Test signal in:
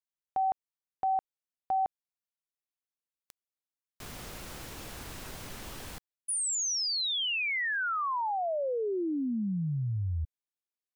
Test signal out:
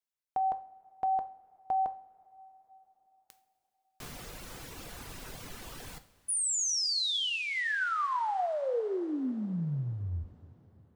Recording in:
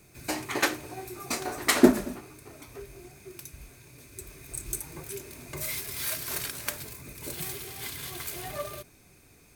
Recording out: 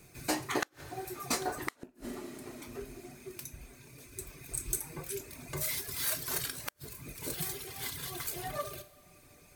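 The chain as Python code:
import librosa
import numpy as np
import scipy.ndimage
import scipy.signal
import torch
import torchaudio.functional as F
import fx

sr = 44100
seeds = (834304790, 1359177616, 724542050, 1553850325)

y = fx.rattle_buzz(x, sr, strikes_db=-22.0, level_db=-17.0)
y = fx.dereverb_blind(y, sr, rt60_s=0.9)
y = fx.dynamic_eq(y, sr, hz=2400.0, q=3.6, threshold_db=-53.0, ratio=4.0, max_db=-5)
y = fx.rev_double_slope(y, sr, seeds[0], early_s=0.41, late_s=4.5, knee_db=-20, drr_db=8.5)
y = fx.gate_flip(y, sr, shuts_db=-15.0, range_db=-39)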